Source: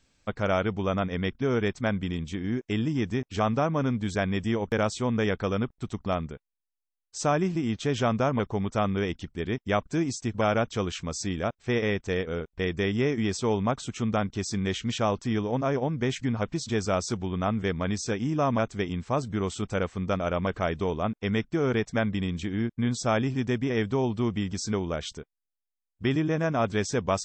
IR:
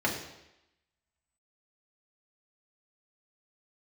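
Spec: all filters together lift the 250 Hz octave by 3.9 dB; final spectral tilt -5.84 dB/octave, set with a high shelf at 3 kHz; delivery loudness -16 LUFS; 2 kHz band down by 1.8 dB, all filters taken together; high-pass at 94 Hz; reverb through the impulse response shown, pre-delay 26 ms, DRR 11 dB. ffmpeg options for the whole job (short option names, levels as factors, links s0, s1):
-filter_complex "[0:a]highpass=94,equalizer=f=250:t=o:g=5,equalizer=f=2000:t=o:g=-4,highshelf=f=3000:g=4.5,asplit=2[s0][s1];[1:a]atrim=start_sample=2205,adelay=26[s2];[s1][s2]afir=irnorm=-1:irlink=0,volume=0.0841[s3];[s0][s3]amix=inputs=2:normalize=0,volume=2.99"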